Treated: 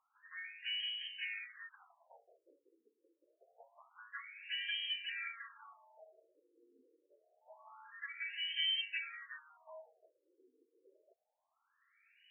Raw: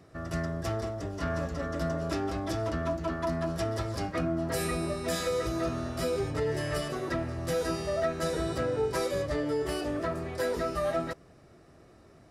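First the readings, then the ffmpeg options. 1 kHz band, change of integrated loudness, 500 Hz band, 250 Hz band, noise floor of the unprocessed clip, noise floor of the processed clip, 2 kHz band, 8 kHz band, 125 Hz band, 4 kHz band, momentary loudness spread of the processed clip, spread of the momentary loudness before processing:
−23.0 dB, −8.0 dB, −34.0 dB, below −40 dB, −56 dBFS, −84 dBFS, −4.5 dB, below −40 dB, below −40 dB, +3.0 dB, 22 LU, 4 LU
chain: -af "lowpass=frequency=3100:width_type=q:width=0.5098,lowpass=frequency=3100:width_type=q:width=0.6013,lowpass=frequency=3100:width_type=q:width=0.9,lowpass=frequency=3100:width_type=q:width=2.563,afreqshift=-3600,afftfilt=real='re*between(b*sr/1024,360*pow(2300/360,0.5+0.5*sin(2*PI*0.26*pts/sr))/1.41,360*pow(2300/360,0.5+0.5*sin(2*PI*0.26*pts/sr))*1.41)':imag='im*between(b*sr/1024,360*pow(2300/360,0.5+0.5*sin(2*PI*0.26*pts/sr))/1.41,360*pow(2300/360,0.5+0.5*sin(2*PI*0.26*pts/sr))*1.41)':win_size=1024:overlap=0.75,volume=-3.5dB"

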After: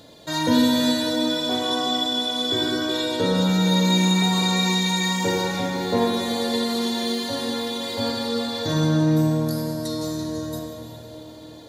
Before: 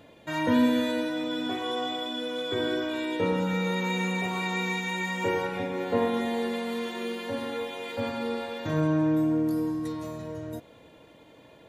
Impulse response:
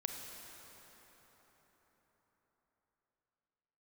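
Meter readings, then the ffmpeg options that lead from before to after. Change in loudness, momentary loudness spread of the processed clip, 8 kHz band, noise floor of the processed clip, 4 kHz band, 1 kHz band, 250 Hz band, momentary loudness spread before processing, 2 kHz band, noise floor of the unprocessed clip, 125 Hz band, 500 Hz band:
+6.5 dB, 10 LU, +15.5 dB, −41 dBFS, +13.0 dB, +5.5 dB, +6.0 dB, 10 LU, +2.5 dB, −54 dBFS, +9.5 dB, +4.0 dB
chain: -filter_complex "[0:a]highshelf=frequency=3300:width_type=q:width=3:gain=8[link_01];[1:a]atrim=start_sample=2205,asetrate=52920,aresample=44100[link_02];[link_01][link_02]afir=irnorm=-1:irlink=0,volume=7.5dB"

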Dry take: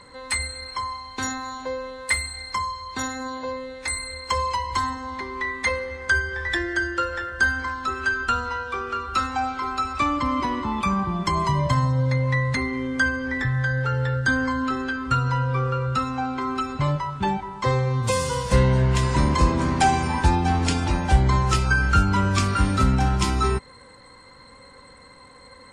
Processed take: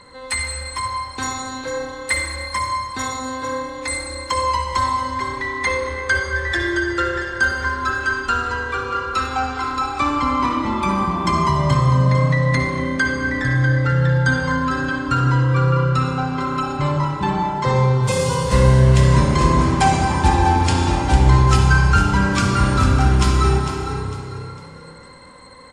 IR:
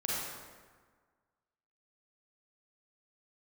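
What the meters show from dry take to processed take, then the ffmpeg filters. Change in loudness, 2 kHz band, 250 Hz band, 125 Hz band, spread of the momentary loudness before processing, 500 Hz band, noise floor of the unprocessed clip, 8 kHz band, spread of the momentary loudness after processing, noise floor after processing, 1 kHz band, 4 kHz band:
+5.0 dB, +3.5 dB, +4.5 dB, +6.5 dB, 9 LU, +5.5 dB, −48 dBFS, +3.5 dB, 11 LU, −37 dBFS, +4.5 dB, +3.5 dB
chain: -filter_complex "[0:a]asplit=5[link_01][link_02][link_03][link_04][link_05];[link_02]adelay=452,afreqshift=32,volume=-9.5dB[link_06];[link_03]adelay=904,afreqshift=64,volume=-19.1dB[link_07];[link_04]adelay=1356,afreqshift=96,volume=-28.8dB[link_08];[link_05]adelay=1808,afreqshift=128,volume=-38.4dB[link_09];[link_01][link_06][link_07][link_08][link_09]amix=inputs=5:normalize=0,asplit=2[link_10][link_11];[1:a]atrim=start_sample=2205,asetrate=31311,aresample=44100[link_12];[link_11][link_12]afir=irnorm=-1:irlink=0,volume=-6dB[link_13];[link_10][link_13]amix=inputs=2:normalize=0,volume=-2dB"

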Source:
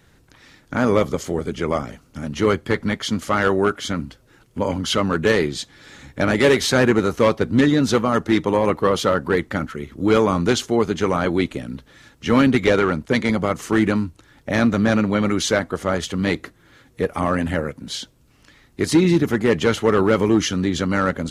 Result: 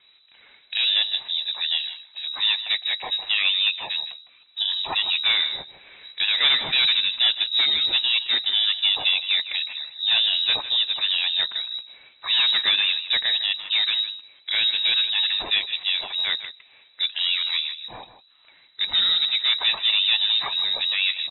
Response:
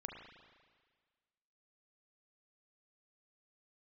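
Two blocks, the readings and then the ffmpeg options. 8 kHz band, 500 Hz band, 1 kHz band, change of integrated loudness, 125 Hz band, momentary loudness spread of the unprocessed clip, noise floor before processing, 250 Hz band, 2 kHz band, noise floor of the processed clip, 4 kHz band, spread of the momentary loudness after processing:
below −40 dB, −27.5 dB, −13.5 dB, −0.5 dB, below −30 dB, 12 LU, −55 dBFS, below −30 dB, −1.5 dB, −56 dBFS, +13.5 dB, 10 LU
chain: -filter_complex "[0:a]equalizer=frequency=130:width_type=o:width=0.25:gain=9,bandreject=frequency=50:width_type=h:width=6,bandreject=frequency=100:width_type=h:width=6,bandreject=frequency=150:width_type=h:width=6,bandreject=frequency=200:width_type=h:width=6,bandreject=frequency=250:width_type=h:width=6,bandreject=frequency=300:width_type=h:width=6,acrossover=split=620[link_01][link_02];[link_01]asoftclip=type=hard:threshold=-15dB[link_03];[link_03][link_02]amix=inputs=2:normalize=0,lowpass=frequency=3400:width_type=q:width=0.5098,lowpass=frequency=3400:width_type=q:width=0.6013,lowpass=frequency=3400:width_type=q:width=0.9,lowpass=frequency=3400:width_type=q:width=2.563,afreqshift=-4000,asplit=2[link_04][link_05];[link_05]adelay=157.4,volume=-12dB,highshelf=frequency=4000:gain=-3.54[link_06];[link_04][link_06]amix=inputs=2:normalize=0,volume=-3dB"

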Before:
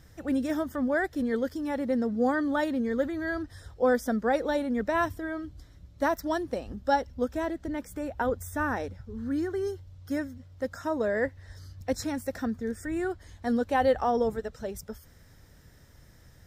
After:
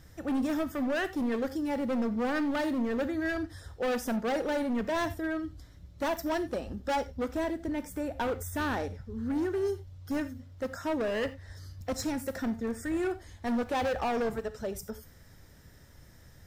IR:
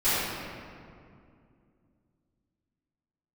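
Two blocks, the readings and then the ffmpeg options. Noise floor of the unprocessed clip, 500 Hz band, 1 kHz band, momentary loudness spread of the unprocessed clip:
−55 dBFS, −3.5 dB, −4.0 dB, 11 LU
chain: -filter_complex "[0:a]volume=27.5dB,asoftclip=hard,volume=-27.5dB,asplit=2[link_01][link_02];[1:a]atrim=start_sample=2205,atrim=end_sample=4410,highshelf=frequency=10000:gain=11[link_03];[link_02][link_03]afir=irnorm=-1:irlink=0,volume=-23.5dB[link_04];[link_01][link_04]amix=inputs=2:normalize=0"

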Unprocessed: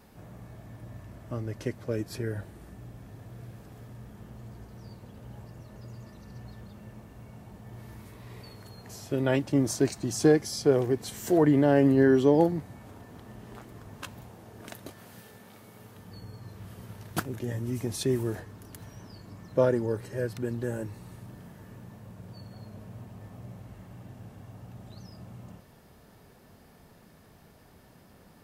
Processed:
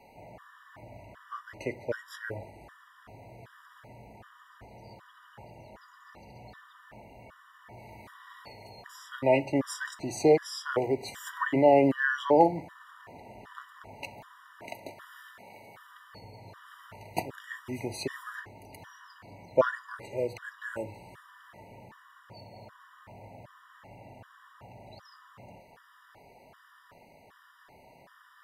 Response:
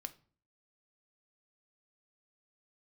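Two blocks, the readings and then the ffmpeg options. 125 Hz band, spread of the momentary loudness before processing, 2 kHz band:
−9.5 dB, 25 LU, +5.0 dB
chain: -filter_complex "[0:a]acrossover=split=560 3100:gain=0.158 1 0.224[link_01][link_02][link_03];[link_01][link_02][link_03]amix=inputs=3:normalize=0,asplit=2[link_04][link_05];[1:a]atrim=start_sample=2205[link_06];[link_05][link_06]afir=irnorm=-1:irlink=0,volume=9dB[link_07];[link_04][link_07]amix=inputs=2:normalize=0,afftfilt=real='re*gt(sin(2*PI*1.3*pts/sr)*(1-2*mod(floor(b*sr/1024/970),2)),0)':imag='im*gt(sin(2*PI*1.3*pts/sr)*(1-2*mod(floor(b*sr/1024/970),2)),0)':win_size=1024:overlap=0.75"

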